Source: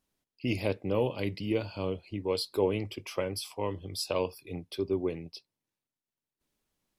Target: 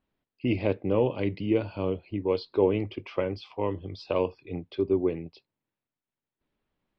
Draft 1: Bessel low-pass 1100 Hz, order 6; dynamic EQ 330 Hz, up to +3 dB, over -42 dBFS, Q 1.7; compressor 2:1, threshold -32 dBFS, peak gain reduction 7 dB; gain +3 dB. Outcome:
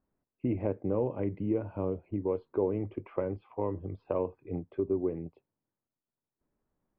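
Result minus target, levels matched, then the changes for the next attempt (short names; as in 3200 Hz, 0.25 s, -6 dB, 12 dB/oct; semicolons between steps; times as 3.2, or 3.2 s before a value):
2000 Hz band -9.0 dB; compressor: peak gain reduction +7 dB
change: Bessel low-pass 2500 Hz, order 6; remove: compressor 2:1, threshold -32 dBFS, peak gain reduction 7 dB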